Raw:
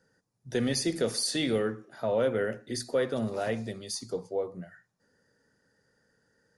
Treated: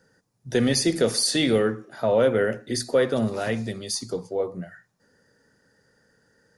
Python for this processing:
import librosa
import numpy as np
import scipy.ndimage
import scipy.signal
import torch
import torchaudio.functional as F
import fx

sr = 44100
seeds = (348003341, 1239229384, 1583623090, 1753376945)

y = fx.dynamic_eq(x, sr, hz=610.0, q=1.1, threshold_db=-41.0, ratio=4.0, max_db=-5, at=(3.26, 4.4))
y = y * 10.0 ** (7.0 / 20.0)